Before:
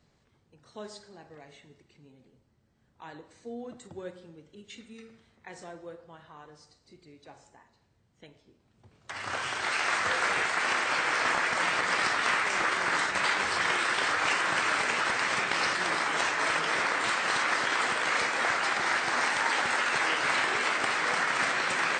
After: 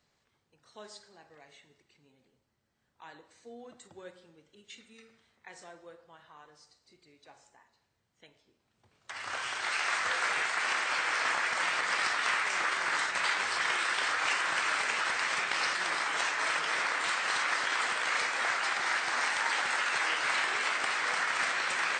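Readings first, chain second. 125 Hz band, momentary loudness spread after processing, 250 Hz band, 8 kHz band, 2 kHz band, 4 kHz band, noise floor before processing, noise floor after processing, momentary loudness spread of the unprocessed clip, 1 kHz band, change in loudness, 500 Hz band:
under -10 dB, 1 LU, -10.0 dB, -1.5 dB, -2.5 dB, -1.5 dB, -68 dBFS, -77 dBFS, 17 LU, -3.5 dB, -2.5 dB, -7.0 dB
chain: bass shelf 500 Hz -11.5 dB; trim -1.5 dB

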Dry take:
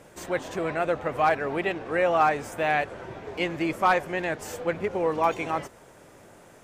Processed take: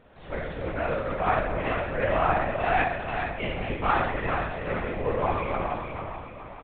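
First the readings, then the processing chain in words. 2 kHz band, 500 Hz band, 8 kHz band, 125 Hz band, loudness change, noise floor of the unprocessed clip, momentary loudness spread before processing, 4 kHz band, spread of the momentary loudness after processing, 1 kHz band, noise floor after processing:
-0.5 dB, -1.5 dB, under -35 dB, +5.5 dB, -1.5 dB, -52 dBFS, 9 LU, -1.5 dB, 11 LU, -1.0 dB, -43 dBFS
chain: on a send: feedback delay 432 ms, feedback 45%, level -6 dB; on the sum: Schroeder reverb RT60 1 s, combs from 25 ms, DRR -4 dB; LPC vocoder at 8 kHz whisper; trim -7 dB

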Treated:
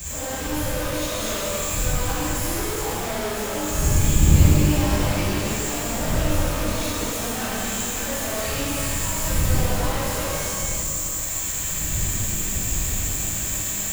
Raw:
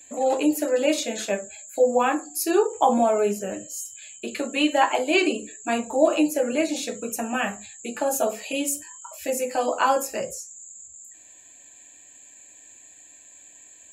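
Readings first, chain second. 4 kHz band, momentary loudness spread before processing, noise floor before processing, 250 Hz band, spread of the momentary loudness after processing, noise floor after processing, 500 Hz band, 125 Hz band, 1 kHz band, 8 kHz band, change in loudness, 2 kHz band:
+4.0 dB, 15 LU, -50 dBFS, -0.5 dB, 6 LU, -28 dBFS, -5.5 dB, no reading, -4.5 dB, +8.5 dB, +1.0 dB, +0.5 dB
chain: one-bit comparator; wind noise 83 Hz -23 dBFS; pitch-shifted reverb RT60 2.9 s, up +12 st, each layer -8 dB, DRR -11.5 dB; trim -14 dB

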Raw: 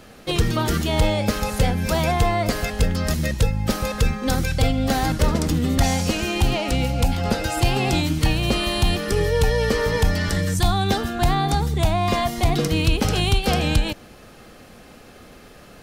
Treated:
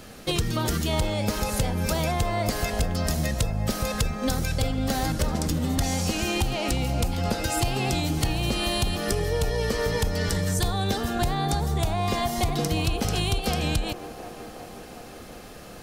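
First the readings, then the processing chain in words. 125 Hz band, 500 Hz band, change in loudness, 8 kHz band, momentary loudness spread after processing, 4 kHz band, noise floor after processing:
-5.0 dB, -5.0 dB, -4.5 dB, -1.0 dB, 10 LU, -4.0 dB, -43 dBFS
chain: tone controls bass +2 dB, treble +5 dB; compression, threshold -22 dBFS, peak gain reduction 10.5 dB; feedback echo behind a band-pass 364 ms, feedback 72%, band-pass 670 Hz, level -9 dB

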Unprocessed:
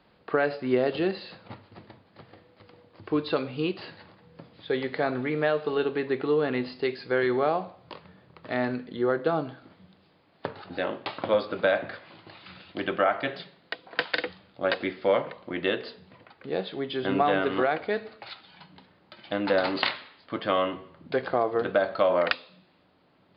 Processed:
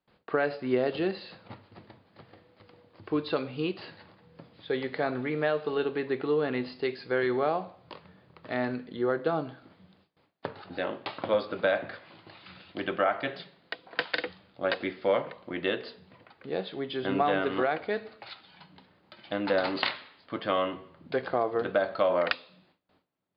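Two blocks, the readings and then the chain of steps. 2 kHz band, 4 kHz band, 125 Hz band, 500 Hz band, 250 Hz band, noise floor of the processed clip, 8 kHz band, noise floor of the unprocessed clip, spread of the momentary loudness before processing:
-2.5 dB, -2.5 dB, -2.5 dB, -2.5 dB, -2.5 dB, -67 dBFS, no reading, -62 dBFS, 18 LU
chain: gate with hold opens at -51 dBFS; trim -2.5 dB

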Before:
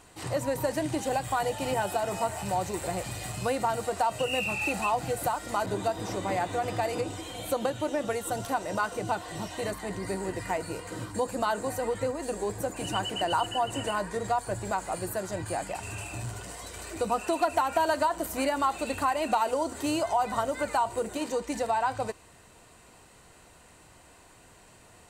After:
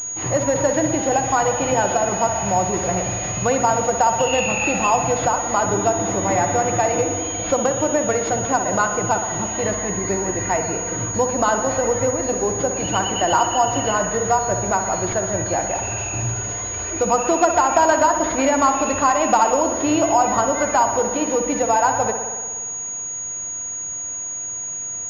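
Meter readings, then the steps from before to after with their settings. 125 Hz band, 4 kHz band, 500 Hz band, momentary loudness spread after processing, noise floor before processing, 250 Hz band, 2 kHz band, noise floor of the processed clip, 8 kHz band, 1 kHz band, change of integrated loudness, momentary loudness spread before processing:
+10.0 dB, +5.5 dB, +10.0 dB, 8 LU, -55 dBFS, +10.5 dB, +9.0 dB, -29 dBFS, +20.0 dB, +10.0 dB, +10.5 dB, 7 LU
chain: spring tank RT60 1.5 s, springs 60 ms, chirp 55 ms, DRR 5.5 dB; class-D stage that switches slowly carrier 6.7 kHz; trim +9 dB

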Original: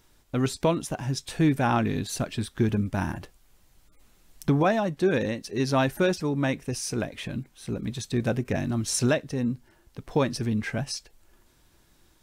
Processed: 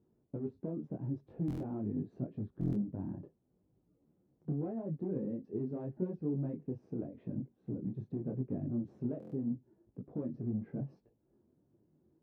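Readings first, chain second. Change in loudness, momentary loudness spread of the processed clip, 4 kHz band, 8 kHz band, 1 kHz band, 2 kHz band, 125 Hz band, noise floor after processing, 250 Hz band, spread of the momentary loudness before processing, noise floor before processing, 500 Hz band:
-12.0 dB, 6 LU, under -40 dB, under -40 dB, -26.0 dB, under -35 dB, -10.5 dB, -76 dBFS, -10.0 dB, 10 LU, -62 dBFS, -15.0 dB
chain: compression 3:1, threshold -29 dBFS, peak gain reduction 9 dB; one-sided clip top -31 dBFS, bottom -23.5 dBFS; Butterworth band-pass 230 Hz, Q 0.71; buffer glitch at 1.46/2.59/9.18 s, samples 1024, times 5; detune thickener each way 28 cents; trim +1 dB

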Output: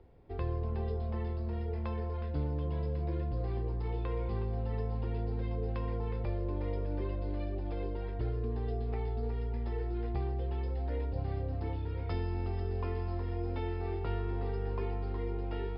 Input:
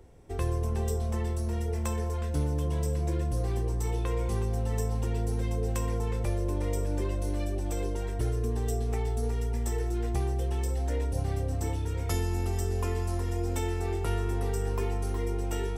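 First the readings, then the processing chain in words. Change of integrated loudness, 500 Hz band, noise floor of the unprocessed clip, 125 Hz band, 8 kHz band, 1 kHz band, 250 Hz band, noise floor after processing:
-5.0 dB, -4.5 dB, -31 dBFS, -5.0 dB, under -40 dB, -4.5 dB, -5.0 dB, -36 dBFS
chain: Chebyshev low-pass 5.1 kHz, order 10; treble shelf 3.2 kHz -8.5 dB; trim -4 dB

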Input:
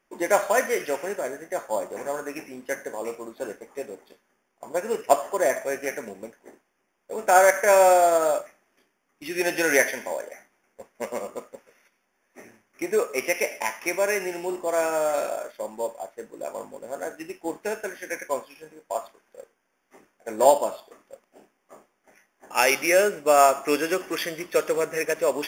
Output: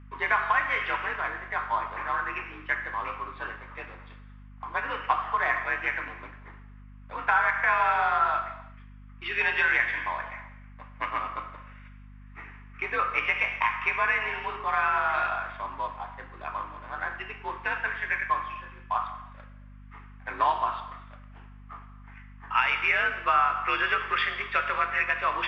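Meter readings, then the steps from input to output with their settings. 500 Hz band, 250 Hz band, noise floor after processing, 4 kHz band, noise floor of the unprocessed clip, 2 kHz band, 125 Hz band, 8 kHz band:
-16.5 dB, -14.0 dB, -48 dBFS, -1.5 dB, -73 dBFS, +3.5 dB, +4.5 dB, under -30 dB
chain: resonant low shelf 760 Hz -12.5 dB, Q 3; compression 6:1, threshold -25 dBFS, peak gain reduction 13 dB; gated-style reverb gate 380 ms falling, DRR 8 dB; mistuned SSB +55 Hz 180–3400 Hz; hum 50 Hz, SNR 18 dB; trim +4.5 dB

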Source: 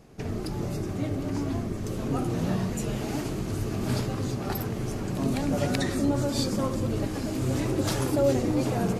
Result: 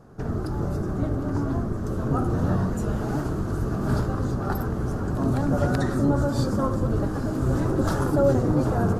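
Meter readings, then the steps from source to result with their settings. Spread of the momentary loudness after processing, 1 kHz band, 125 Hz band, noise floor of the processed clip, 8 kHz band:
6 LU, +5.0 dB, +5.0 dB, -29 dBFS, -6.0 dB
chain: octave divider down 1 oct, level -1 dB; resonant high shelf 1.8 kHz -7.5 dB, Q 3; trim +2 dB

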